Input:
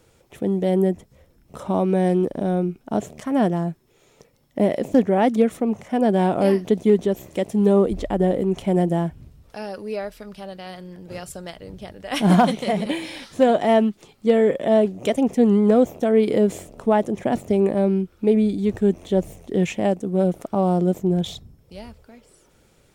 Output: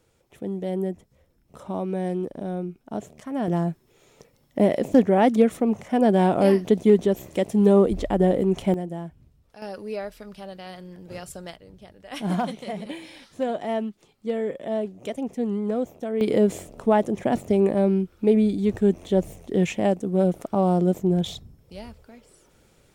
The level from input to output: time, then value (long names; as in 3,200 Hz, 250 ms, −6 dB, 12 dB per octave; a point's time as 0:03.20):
−8 dB
from 0:03.48 0 dB
from 0:08.74 −11.5 dB
from 0:09.62 −3 dB
from 0:11.56 −10 dB
from 0:16.21 −1 dB